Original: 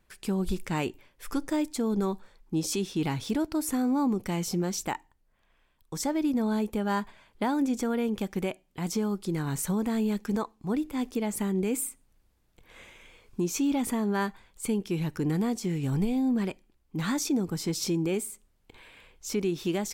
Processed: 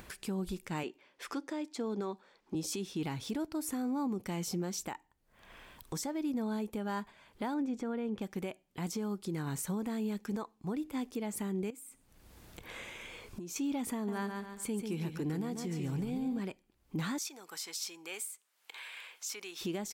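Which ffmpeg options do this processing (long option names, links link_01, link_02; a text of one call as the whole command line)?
ffmpeg -i in.wav -filter_complex "[0:a]asettb=1/sr,asplit=3[link_01][link_02][link_03];[link_01]atrim=end=0.834[link_04];[link_02]atrim=start=0.83:end=2.55,asetpts=PTS-STARTPTS,afade=type=in:duration=0.004:curve=qsin,afade=type=out:start_time=1.716:duration=0.004:curve=qsin,acrossover=split=210 6800:gain=0.0708 1 0.158[link_05][link_06][link_07];[link_05][link_06][link_07]amix=inputs=3:normalize=0[link_08];[link_03]atrim=start=2.546[link_09];[link_04][link_08]acrossfade=duration=0.004:curve1=hsin:curve2=qsin[link_10];[link_10][link_09]acrossfade=duration=0.004:curve1=qsin:curve2=hsin,asettb=1/sr,asplit=3[link_11][link_12][link_13];[link_11]atrim=end=7.544[link_14];[link_12]atrim=start=7.54:end=8.22,asetpts=PTS-STARTPTS,afade=type=in:duration=0.004:curve=qsin,afade=type=out:start_time=0.676:duration=0.004:curve=qsin,aemphasis=mode=reproduction:type=75fm[link_15];[link_13]atrim=start=8.216[link_16];[link_14][link_15]acrossfade=duration=0.004:curve1=hsin:curve2=qsin[link_17];[link_17][link_16]acrossfade=duration=0.004:curve1=qsin:curve2=hsin,asettb=1/sr,asplit=3[link_18][link_19][link_20];[link_18]atrim=end=11.704[link_21];[link_19]atrim=start=11.7:end=13.56,asetpts=PTS-STARTPTS,afade=type=in:duration=0.004:curve=qsin,afade=type=out:start_time=1.856:duration=0.004:curve=qsin,acompressor=threshold=-41dB:ratio=10:attack=3.2:release=140:knee=1:detection=peak[link_22];[link_20]atrim=start=13.556[link_23];[link_21][link_22]acrossfade=duration=0.004:curve1=hsin:curve2=qsin[link_24];[link_24][link_23]acrossfade=duration=0.004:curve1=qsin:curve2=hsin,asplit=3[link_25][link_26][link_27];[link_25]afade=type=out:start_time=14.07:duration=0.02[link_28];[link_26]aecho=1:1:141|282|423|564:0.447|0.143|0.0457|0.0146,afade=type=in:start_time=14.07:duration=0.02,afade=type=out:start_time=16.39:duration=0.02[link_29];[link_27]afade=type=in:start_time=16.39:duration=0.02[link_30];[link_28][link_29][link_30]amix=inputs=3:normalize=0,asettb=1/sr,asplit=3[link_31][link_32][link_33];[link_31]atrim=end=17.184[link_34];[link_32]atrim=start=17.18:end=19.61,asetpts=PTS-STARTPTS,afade=type=in:duration=0.004:curve=qsin,afade=type=out:start_time=2.426:duration=0.004:curve=qsin,highpass=1100[link_35];[link_33]atrim=start=19.606[link_36];[link_34][link_35]acrossfade=duration=0.004:curve1=hsin:curve2=qsin[link_37];[link_37][link_36]acrossfade=duration=0.004:curve1=qsin:curve2=hsin,highpass=frequency=73:poles=1,acompressor=mode=upward:threshold=-38dB:ratio=2.5,alimiter=level_in=4dB:limit=-24dB:level=0:latency=1:release=479,volume=-4dB" out.wav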